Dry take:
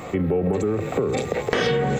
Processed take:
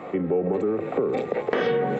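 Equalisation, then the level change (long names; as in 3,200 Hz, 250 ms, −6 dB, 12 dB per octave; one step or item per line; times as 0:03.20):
three-way crossover with the lows and the highs turned down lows −21 dB, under 180 Hz, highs −14 dB, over 4,300 Hz
high-shelf EQ 2,400 Hz −11.5 dB
0.0 dB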